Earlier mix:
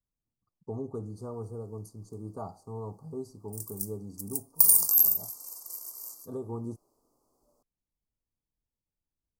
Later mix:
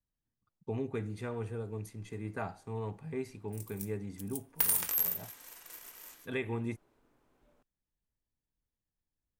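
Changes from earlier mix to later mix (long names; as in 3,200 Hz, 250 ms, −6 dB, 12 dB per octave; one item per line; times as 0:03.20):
background: add bass and treble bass +6 dB, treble −10 dB
master: remove Chebyshev band-stop filter 1,200–4,600 Hz, order 4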